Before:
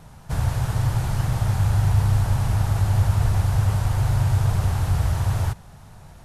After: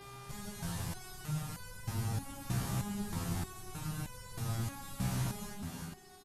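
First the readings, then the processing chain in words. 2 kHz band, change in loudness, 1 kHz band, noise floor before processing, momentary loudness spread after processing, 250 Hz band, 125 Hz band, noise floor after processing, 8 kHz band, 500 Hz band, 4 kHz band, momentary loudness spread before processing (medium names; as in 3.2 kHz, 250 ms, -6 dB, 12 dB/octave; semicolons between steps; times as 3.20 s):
-11.5 dB, -17.5 dB, -14.0 dB, -46 dBFS, 9 LU, -7.5 dB, -19.0 dB, -53 dBFS, -6.5 dB, -13.0 dB, -8.5 dB, 5 LU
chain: comb filter that takes the minimum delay 7.3 ms; resampled via 32 kHz; treble shelf 3 kHz +10 dB; frequency-shifting echo 332 ms, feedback 55%, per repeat +32 Hz, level -8 dB; mains buzz 400 Hz, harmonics 13, -43 dBFS -5 dB/octave; in parallel at +2.5 dB: compression, threshold -34 dBFS, peak gain reduction 17 dB; on the sum: resonator arpeggio 3.2 Hz 63–500 Hz; trim -7 dB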